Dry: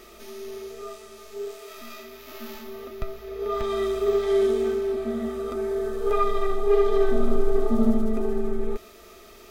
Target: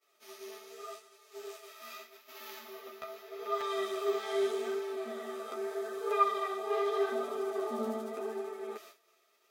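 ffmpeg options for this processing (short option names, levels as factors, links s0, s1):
-af "flanger=delay=6.8:depth=7.1:regen=-1:speed=0.82:shape=sinusoidal,agate=range=0.0224:threshold=0.0112:ratio=3:detection=peak,highpass=590"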